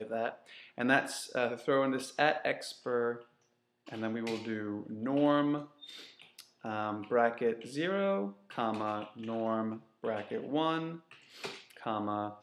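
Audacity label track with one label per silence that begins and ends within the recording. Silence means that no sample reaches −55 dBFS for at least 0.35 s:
3.260000	3.860000	silence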